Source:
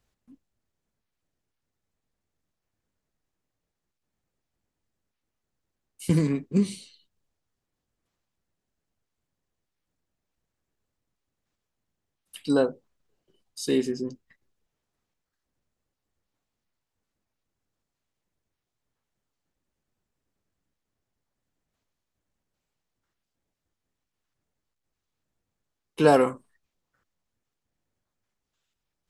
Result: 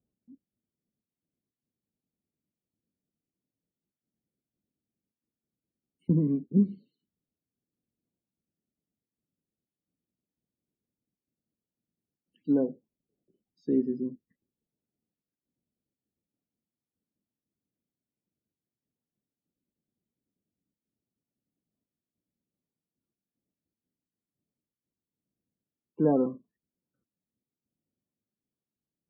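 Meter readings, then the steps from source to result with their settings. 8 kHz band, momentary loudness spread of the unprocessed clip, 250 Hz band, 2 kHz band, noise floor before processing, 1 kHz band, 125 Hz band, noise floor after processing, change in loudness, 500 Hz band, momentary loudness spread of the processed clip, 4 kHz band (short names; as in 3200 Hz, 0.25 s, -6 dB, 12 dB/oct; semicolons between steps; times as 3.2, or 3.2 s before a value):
under -30 dB, 16 LU, -0.5 dB, under -20 dB, -84 dBFS, under -10 dB, -2.5 dB, under -85 dBFS, -3.0 dB, -7.0 dB, 12 LU, under -30 dB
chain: band-pass 230 Hz, Q 1.5; loudest bins only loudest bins 32; gain +1 dB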